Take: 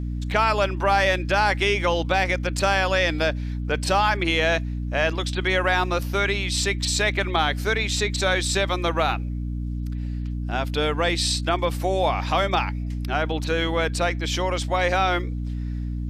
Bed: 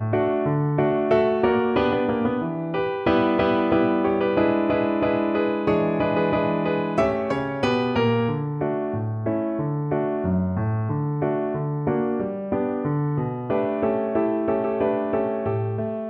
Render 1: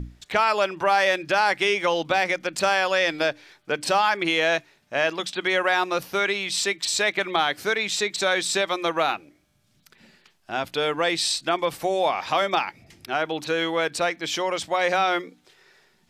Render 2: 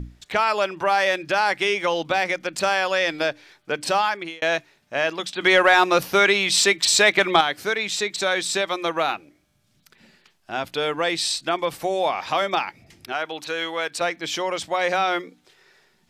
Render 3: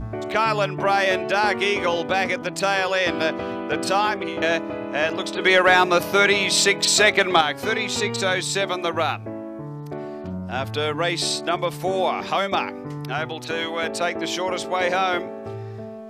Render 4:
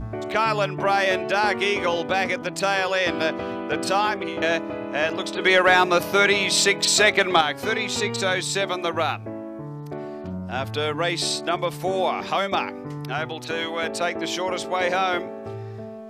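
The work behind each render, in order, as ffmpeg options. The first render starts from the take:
-af "bandreject=f=60:t=h:w=6,bandreject=f=120:t=h:w=6,bandreject=f=180:t=h:w=6,bandreject=f=240:t=h:w=6,bandreject=f=300:t=h:w=6"
-filter_complex "[0:a]asettb=1/sr,asplit=3[s0][s1][s2];[s0]atrim=end=5.404[s3];[s1]atrim=start=5.4:end=7.41,asetpts=PTS-STARTPTS,afade=t=in:d=0.004:c=qsin,afade=t=out:st=2.006:d=0.004:c=qsin,acontrast=80[s4];[s2]atrim=start=7.406[s5];[s3][s4]acrossfade=d=0.004:c1=hsin:c2=qsin[s6];[s6][s5]acrossfade=d=0.004:c1=qsin:c2=hsin,asettb=1/sr,asplit=3[s7][s8][s9];[s7]atrim=end=13.124[s10];[s8]atrim=start=13.12:end=14.01,asetpts=PTS-STARTPTS,afade=t=in:d=0.004:c=qsin,afade=t=out:st=0.886:d=0.004:c=qsin,lowshelf=f=410:g=-11[s11];[s9]atrim=start=14.006[s12];[s10][s11]acrossfade=d=0.004:c1=hsin:c2=qsin[s13];[s13][s12]acrossfade=d=0.004:c1=qsin:c2=hsin,asplit=2[s14][s15];[s14]atrim=end=4.42,asetpts=PTS-STARTPTS,afade=t=out:st=4.01:d=0.41[s16];[s15]atrim=start=4.42,asetpts=PTS-STARTPTS,afade=t=in:d=0.004:c=hsin[s17];[s16][s17]concat=n=2:v=0:a=1"
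-filter_complex "[1:a]volume=0.376[s0];[0:a][s0]amix=inputs=2:normalize=0"
-af "volume=0.891"

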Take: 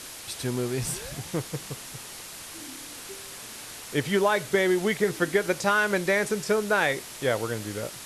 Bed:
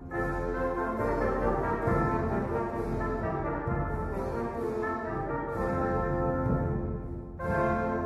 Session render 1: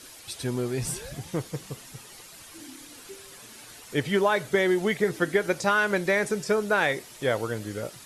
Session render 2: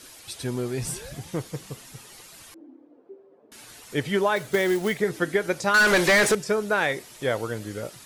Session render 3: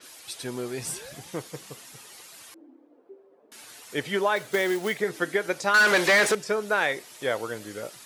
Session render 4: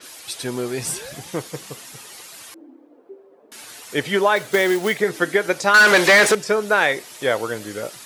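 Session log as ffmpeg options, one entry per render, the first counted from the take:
-af "afftdn=nr=9:nf=-42"
-filter_complex "[0:a]asettb=1/sr,asplit=3[s0][s1][s2];[s0]atrim=end=2.544[s3];[s1]atrim=start=2.54:end=3.52,asetpts=PTS-STARTPTS,afade=t=in:d=0.004:c=qsin,afade=t=out:st=0.976:d=0.004:c=qsin,asuperpass=centerf=410:order=4:qfactor=1.1[s4];[s2]atrim=start=3.516[s5];[s3][s4]acrossfade=d=0.004:c1=hsin:c2=qsin[s6];[s6][s5]acrossfade=d=0.004:c1=qsin:c2=hsin,asettb=1/sr,asplit=3[s7][s8][s9];[s7]atrim=end=4.364[s10];[s8]atrim=start=4.36:end=5,asetpts=PTS-STARTPTS,afade=t=in:d=0.004:c=qsin,afade=t=out:st=0.636:d=0.004:c=qsin,acrusher=bits=4:mode=log:mix=0:aa=0.000001[s11];[s9]atrim=start=4.996[s12];[s10][s11]acrossfade=d=0.004:c1=hsin:c2=qsin[s13];[s13][s12]acrossfade=d=0.004:c1=qsin:c2=hsin,asettb=1/sr,asplit=3[s14][s15][s16];[s14]atrim=end=5.744[s17];[s15]atrim=start=5.74:end=6.35,asetpts=PTS-STARTPTS,afade=t=in:d=0.004:c=qsin,afade=t=out:st=0.606:d=0.004:c=qsin,asplit=2[s18][s19];[s19]highpass=f=720:p=1,volume=17.8,asoftclip=type=tanh:threshold=0.266[s20];[s18][s20]amix=inputs=2:normalize=0,lowpass=f=7000:p=1,volume=0.501[s21];[s16]atrim=start=6.346[s22];[s17][s21]acrossfade=d=0.004:c1=hsin:c2=qsin[s23];[s23][s22]acrossfade=d=0.004:c1=qsin:c2=hsin"
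-af "highpass=f=380:p=1,adynamicequalizer=threshold=0.01:dfrequency=5600:dqfactor=0.7:tfrequency=5600:tqfactor=0.7:attack=5:release=100:ratio=0.375:range=2:mode=cutabove:tftype=highshelf"
-af "volume=2.24"

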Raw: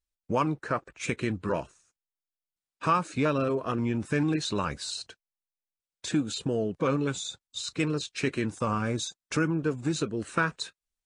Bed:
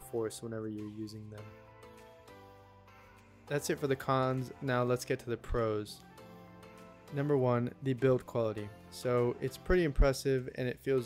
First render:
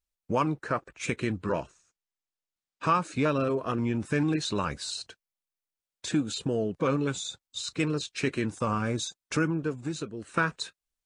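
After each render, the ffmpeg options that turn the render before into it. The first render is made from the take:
-filter_complex "[0:a]asettb=1/sr,asplit=3[s0][s1][s2];[s0]atrim=end=1.444[s3];[s1]atrim=start=1.44:end=3.02,asetpts=PTS-STARTPTS,afade=t=in:d=0.004:c=qsin,afade=t=out:st=1.576:d=0.004:c=qsin,lowpass=f=8400:w=0.5412,lowpass=f=8400:w=1.3066[s4];[s2]atrim=start=3.016[s5];[s3][s4]acrossfade=d=0.004:c1=hsin:c2=qsin[s6];[s6][s5]acrossfade=d=0.004:c1=qsin:c2=hsin,asplit=2[s7][s8];[s7]atrim=end=10.34,asetpts=PTS-STARTPTS,afade=t=out:st=9.44:d=0.9:c=qua:silence=0.446684[s9];[s8]atrim=start=10.34,asetpts=PTS-STARTPTS,afade=t=in:d=0.004:c=hsin:silence=0.446684[s10];[s9][s10]concat=n=2:v=0:a=1"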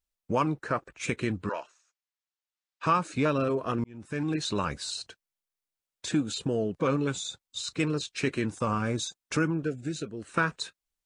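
-filter_complex "[0:a]asettb=1/sr,asplit=3[s0][s1][s2];[s0]atrim=end=1.494[s3];[s1]atrim=start=1.49:end=2.86,asetpts=PTS-STARTPTS,afade=t=in:d=0.004:c=qsin,afade=t=out:st=1.366:d=0.004:c=qsin,highpass=710,lowpass=6800[s4];[s2]atrim=start=2.856[s5];[s3][s4]acrossfade=d=0.004:c1=hsin:c2=qsin[s6];[s6][s5]acrossfade=d=0.004:c1=qsin:c2=hsin,asettb=1/sr,asplit=3[s7][s8][s9];[s7]atrim=end=9.654[s10];[s8]atrim=start=9.65:end=10.05,asetpts=PTS-STARTPTS,afade=t=in:d=0.004:c=qsin,afade=t=out:st=0.396:d=0.004:c=qsin,asuperstop=centerf=1000:order=8:qfactor=1.6[s11];[s9]atrim=start=10.046[s12];[s10][s11]acrossfade=d=0.004:c1=hsin:c2=qsin[s13];[s13][s12]acrossfade=d=0.004:c1=qsin:c2=hsin,asplit=2[s14][s15];[s14]atrim=end=3.84,asetpts=PTS-STARTPTS,afade=t=out:st=3.836:d=0.004:c=hsin[s16];[s15]atrim=start=3.84,asetpts=PTS-STARTPTS,afade=t=in:d=0.63[s17];[s16][s17]concat=n=2:v=0:a=1"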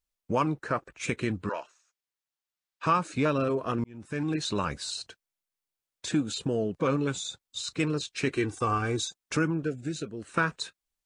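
-filter_complex "[0:a]asettb=1/sr,asplit=3[s0][s1][s2];[s0]atrim=end=8.344[s3];[s1]atrim=start=8.34:end=9.06,asetpts=PTS-STARTPTS,afade=t=in:d=0.004:c=qsin,afade=t=out:st=0.716:d=0.004:c=qsin,aecho=1:1:2.6:0.66,atrim=end_sample=31752[s4];[s2]atrim=start=9.056[s5];[s3][s4]acrossfade=d=0.004:c1=hsin:c2=qsin[s6];[s6][s5]acrossfade=d=0.004:c1=qsin:c2=hsin"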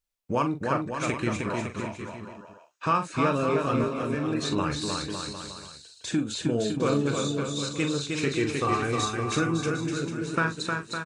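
-filter_complex "[0:a]asplit=2[s0][s1];[s1]adelay=42,volume=0.376[s2];[s0][s2]amix=inputs=2:normalize=0,aecho=1:1:310|558|756.4|915.1|1042:0.631|0.398|0.251|0.158|0.1"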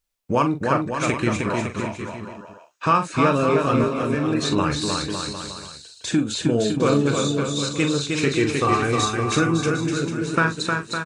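-af "volume=2"

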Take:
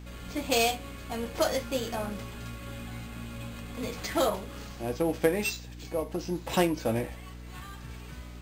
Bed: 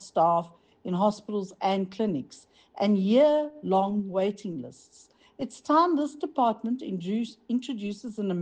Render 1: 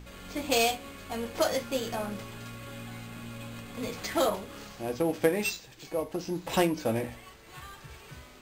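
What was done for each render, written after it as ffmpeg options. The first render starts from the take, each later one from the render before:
-af "bandreject=f=60:t=h:w=4,bandreject=f=120:t=h:w=4,bandreject=f=180:t=h:w=4,bandreject=f=240:t=h:w=4,bandreject=f=300:t=h:w=4"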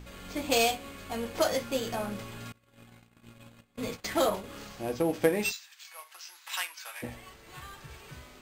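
-filter_complex "[0:a]asettb=1/sr,asplit=3[s0][s1][s2];[s0]atrim=end=2.524[s3];[s1]atrim=start=2.52:end=4.44,asetpts=PTS-STARTPTS,afade=t=in:d=0.004:c=qsin,afade=t=out:st=1.916:d=0.004:c=qsin,agate=range=0.0447:threshold=0.01:ratio=16:release=100:detection=peak[s4];[s2]atrim=start=4.436[s5];[s3][s4]acrossfade=d=0.004:c1=hsin:c2=qsin[s6];[s6][s5]acrossfade=d=0.004:c1=qsin:c2=hsin,asplit=3[s7][s8][s9];[s7]afade=t=out:st=5.51:d=0.02[s10];[s8]highpass=f=1200:w=0.5412,highpass=f=1200:w=1.3066,afade=t=in:st=5.51:d=0.02,afade=t=out:st=7.02:d=0.02[s11];[s9]afade=t=in:st=7.02:d=0.02[s12];[s10][s11][s12]amix=inputs=3:normalize=0"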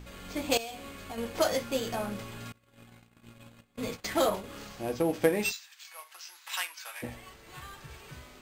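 -filter_complex "[0:a]asettb=1/sr,asplit=3[s0][s1][s2];[s0]atrim=end=0.574[s3];[s1]atrim=start=0.57:end=1.18,asetpts=PTS-STARTPTS,afade=t=in:d=0.004:c=qsin,afade=t=out:st=0.606:d=0.004:c=qsin,acompressor=threshold=0.0178:ratio=16:attack=3.2:release=140:knee=1:detection=peak[s4];[s2]atrim=start=1.176[s5];[s3][s4]acrossfade=d=0.004:c1=hsin:c2=qsin[s6];[s6][s5]acrossfade=d=0.004:c1=qsin:c2=hsin"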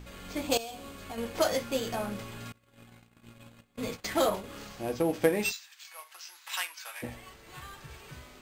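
-filter_complex "[0:a]asettb=1/sr,asplit=3[s0][s1][s2];[s0]atrim=end=0.474[s3];[s1]atrim=start=0.47:end=1.02,asetpts=PTS-STARTPTS,afade=t=in:d=0.004:c=qsin,afade=t=out:st=0.546:d=0.004:c=qsin,equalizer=f=2100:w=2.1:g=-6[s4];[s2]atrim=start=1.016[s5];[s3][s4]acrossfade=d=0.004:c1=hsin:c2=qsin[s6];[s6][s5]acrossfade=d=0.004:c1=qsin:c2=hsin"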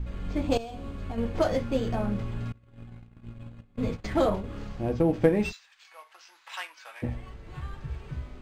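-af "aemphasis=mode=reproduction:type=riaa"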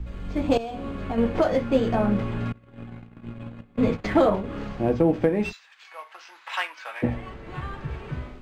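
-filter_complex "[0:a]acrossover=split=150|3300[s0][s1][s2];[s1]dynaudnorm=f=330:g=3:m=3.16[s3];[s0][s3][s2]amix=inputs=3:normalize=0,alimiter=limit=0.355:level=0:latency=1:release=465"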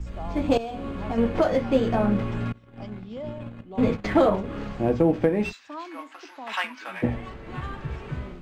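-filter_complex "[1:a]volume=0.15[s0];[0:a][s0]amix=inputs=2:normalize=0"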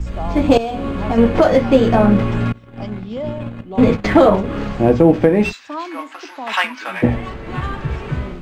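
-af "volume=3.16,alimiter=limit=0.891:level=0:latency=1"

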